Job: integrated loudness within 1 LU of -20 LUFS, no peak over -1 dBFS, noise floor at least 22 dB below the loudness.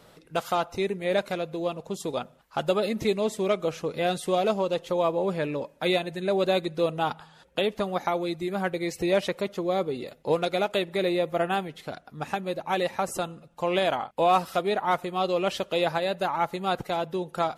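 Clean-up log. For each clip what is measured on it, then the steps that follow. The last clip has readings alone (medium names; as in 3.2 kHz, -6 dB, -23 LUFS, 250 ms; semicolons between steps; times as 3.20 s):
loudness -27.5 LUFS; peak level -11.5 dBFS; loudness target -20.0 LUFS
-> trim +7.5 dB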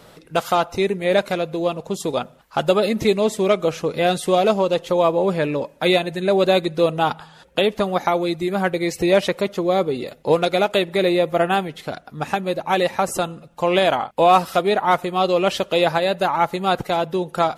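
loudness -20.0 LUFS; peak level -4.0 dBFS; noise floor -48 dBFS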